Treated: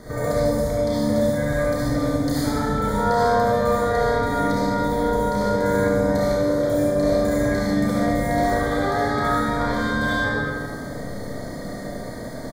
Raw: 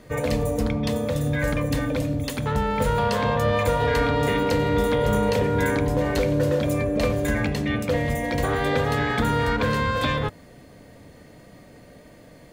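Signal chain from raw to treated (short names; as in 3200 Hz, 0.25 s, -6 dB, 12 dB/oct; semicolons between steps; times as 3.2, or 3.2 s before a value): compressor 6:1, threshold -35 dBFS, peak gain reduction 16.5 dB; Butterworth band-stop 2700 Hz, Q 1.7; early reflections 31 ms -5 dB, 72 ms -4.5 dB; digital reverb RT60 1.7 s, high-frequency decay 0.9×, pre-delay 20 ms, DRR -7.5 dB; gain +5.5 dB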